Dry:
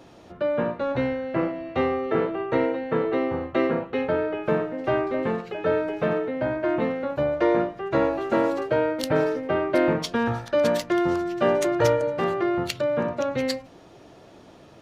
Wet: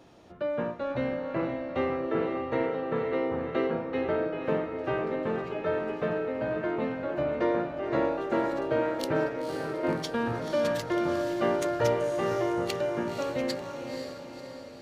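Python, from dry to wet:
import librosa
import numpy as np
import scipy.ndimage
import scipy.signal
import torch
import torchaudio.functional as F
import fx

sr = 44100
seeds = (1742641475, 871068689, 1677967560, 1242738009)

y = fx.level_steps(x, sr, step_db=16, at=(9.27, 9.83), fade=0.02)
y = fx.echo_diffused(y, sr, ms=512, feedback_pct=52, wet_db=-6)
y = y * 10.0 ** (-6.0 / 20.0)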